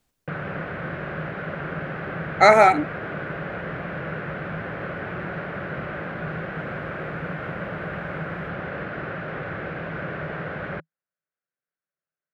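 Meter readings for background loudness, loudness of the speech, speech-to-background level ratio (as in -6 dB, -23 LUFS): -31.5 LUFS, -15.5 LUFS, 16.0 dB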